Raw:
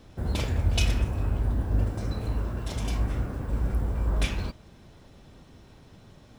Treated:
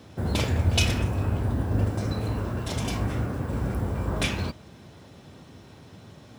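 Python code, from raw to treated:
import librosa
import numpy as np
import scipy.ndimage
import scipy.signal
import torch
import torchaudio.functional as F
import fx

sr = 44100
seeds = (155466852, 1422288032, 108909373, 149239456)

y = scipy.signal.sosfilt(scipy.signal.butter(4, 77.0, 'highpass', fs=sr, output='sos'), x)
y = y * librosa.db_to_amplitude(5.0)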